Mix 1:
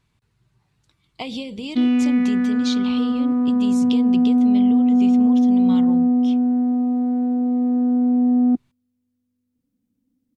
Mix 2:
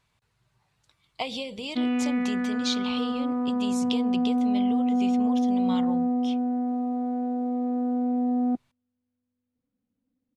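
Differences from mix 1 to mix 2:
background: add distance through air 270 m; master: add resonant low shelf 430 Hz -6.5 dB, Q 1.5

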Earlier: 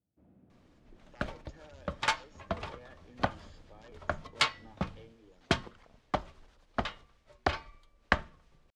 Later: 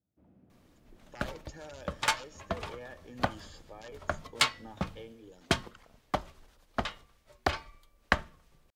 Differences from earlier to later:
speech +7.5 dB; master: remove distance through air 71 m

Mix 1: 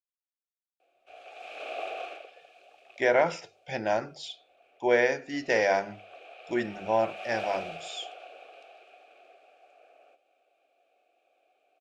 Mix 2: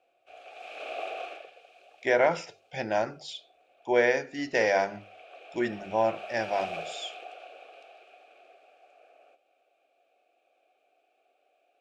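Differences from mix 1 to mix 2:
speech: entry -0.95 s; background: entry -0.80 s

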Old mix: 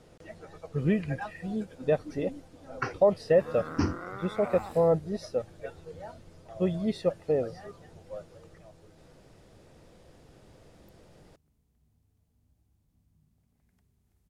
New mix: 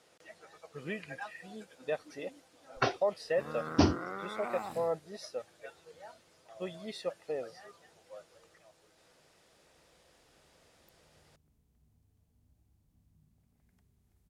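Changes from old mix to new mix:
speech: add high-pass 1.4 kHz 6 dB/octave; first sound: remove static phaser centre 1.5 kHz, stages 4

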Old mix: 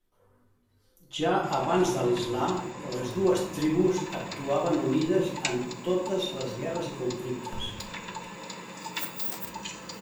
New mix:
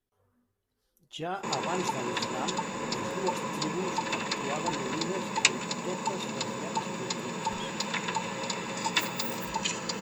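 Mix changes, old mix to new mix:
first sound +9.0 dB; second sound -6.0 dB; reverb: off

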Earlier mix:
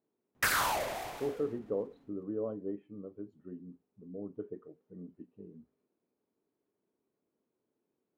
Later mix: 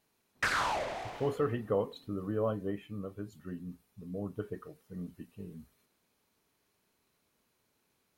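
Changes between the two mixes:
speech: remove band-pass filter 340 Hz, Q 1.6; background: add distance through air 81 m

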